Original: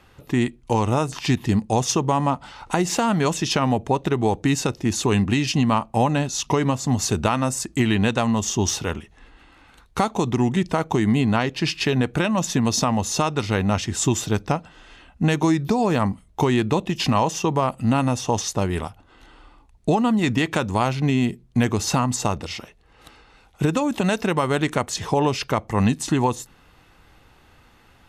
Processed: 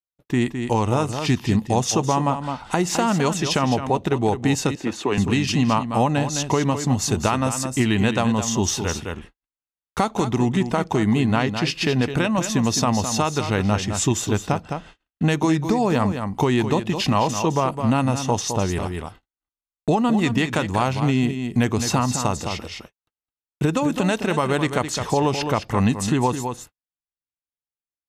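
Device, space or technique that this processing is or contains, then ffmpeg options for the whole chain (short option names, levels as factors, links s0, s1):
ducked delay: -filter_complex "[0:a]asplit=3[s0][s1][s2];[s1]adelay=211,volume=0.708[s3];[s2]apad=whole_len=1247781[s4];[s3][s4]sidechaincompress=threshold=0.0631:ratio=4:attack=28:release=531[s5];[s0][s5]amix=inputs=2:normalize=0,agate=range=0.00141:threshold=0.01:ratio=16:detection=peak,asettb=1/sr,asplit=3[s6][s7][s8];[s6]atrim=end=4.754[s9];[s7]atrim=start=4.75:end=5.18,asetpts=PTS-STARTPTS,afade=t=in:d=0.004:c=qsin,afade=t=out:st=0.426:d=0.004:c=qsin,acrossover=split=220 3600:gain=0.2 1 0.224[s10][s11][s12];[s10][s11][s12]amix=inputs=3:normalize=0[s13];[s8]atrim=start=5.176[s14];[s9][s13]acrossfade=d=0.004:c1=hsin:c2=qsin[s15];[s15][s14]acrossfade=d=0.004:c1=qsin:c2=hsin"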